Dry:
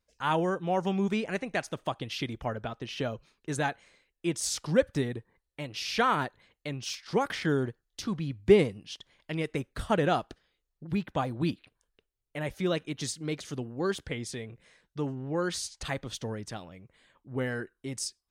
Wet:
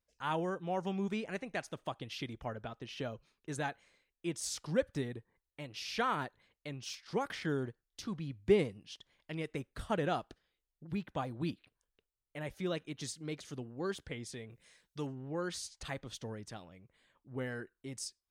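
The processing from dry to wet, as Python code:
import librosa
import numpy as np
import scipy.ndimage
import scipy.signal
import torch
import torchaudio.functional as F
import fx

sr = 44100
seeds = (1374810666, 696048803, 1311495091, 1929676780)

y = fx.high_shelf(x, sr, hz=fx.line((14.49, 4500.0), (15.06, 2400.0)), db=12.0, at=(14.49, 15.06), fade=0.02)
y = y * librosa.db_to_amplitude(-7.5)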